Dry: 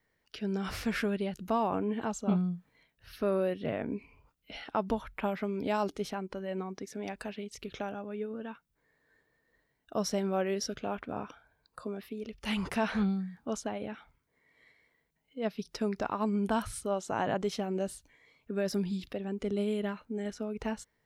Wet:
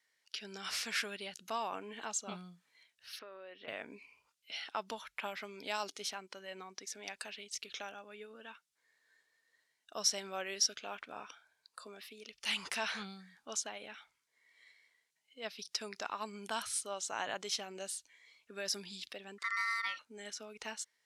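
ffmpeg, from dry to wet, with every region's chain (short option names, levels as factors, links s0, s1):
-filter_complex "[0:a]asettb=1/sr,asplit=3[s0][s1][s2];[s0]atrim=end=3.194[s3];[s1]atrim=start=3.19:end=3.68,asetpts=PTS-STARTPTS,afade=t=in:d=0.004:c=qsin,afade=t=out:st=0.486:d=0.004:c=qsin,highpass=300,lowpass=2500,acompressor=threshold=0.0178:ratio=12:attack=3.2:release=140:knee=1:detection=peak[s4];[s2]atrim=start=3.676[s5];[s3][s4]acrossfade=d=0.004:c1=hsin:c2=qsin[s6];[s6][s5]acrossfade=d=0.004:c1=qsin:c2=hsin,asettb=1/sr,asplit=3[s7][s8][s9];[s7]atrim=end=19.384[s10];[s8]atrim=start=19.38:end=19.99,asetpts=PTS-STARTPTS,afade=t=in:d=0.004:c=qsin,afade=t=out:st=0.606:d=0.004:c=qsin,afreqshift=33,aeval=exprs='val(0)*sin(2*PI*1600*n/s)':c=same[s11];[s9]atrim=start=19.986[s12];[s10][s11]acrossfade=d=0.004:c1=hsin:c2=qsin[s13];[s13][s12]acrossfade=d=0.004:c1=qsin:c2=hsin,lowpass=6700,aderivative,volume=3.55"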